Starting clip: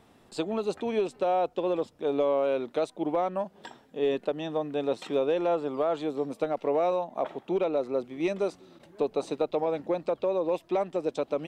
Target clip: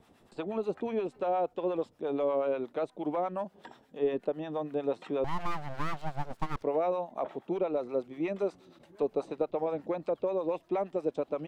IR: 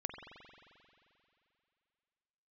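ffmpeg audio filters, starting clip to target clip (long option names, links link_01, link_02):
-filter_complex "[0:a]acrossover=split=2500[link_01][link_02];[link_02]acompressor=threshold=-58dB:ratio=4:attack=1:release=60[link_03];[link_01][link_03]amix=inputs=2:normalize=0,acrossover=split=700[link_04][link_05];[link_04]aeval=exprs='val(0)*(1-0.7/2+0.7/2*cos(2*PI*8.4*n/s))':channel_layout=same[link_06];[link_05]aeval=exprs='val(0)*(1-0.7/2-0.7/2*cos(2*PI*8.4*n/s))':channel_layout=same[link_07];[link_06][link_07]amix=inputs=2:normalize=0,asettb=1/sr,asplit=3[link_08][link_09][link_10];[link_08]atrim=end=5.244[link_11];[link_09]atrim=start=5.24:end=6.63,asetpts=PTS-STARTPTS,afade=type=in:duration=0.004:curve=qsin,afade=type=out:start_time=1.386:duration=0.004:curve=qsin,aeval=exprs='abs(val(0))':channel_layout=same[link_12];[link_10]atrim=start=6.626[link_13];[link_11][link_12]acrossfade=duration=0.004:curve1=hsin:curve2=qsin[link_14];[link_14][link_13]acrossfade=duration=0.004:curve1=qsin:curve2=hsin"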